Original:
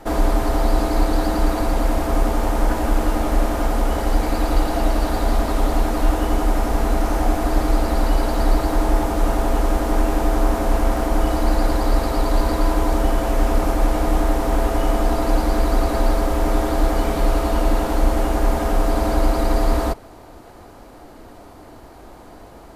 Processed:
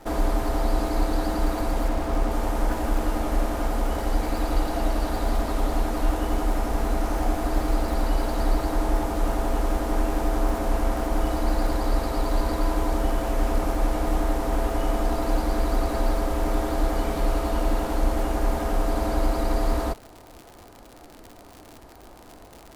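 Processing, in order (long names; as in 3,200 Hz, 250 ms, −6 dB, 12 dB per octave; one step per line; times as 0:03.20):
0:01.88–0:02.31: high-shelf EQ 8,700 Hz −8.5 dB
surface crackle 100 per second −27 dBFS
level −5.5 dB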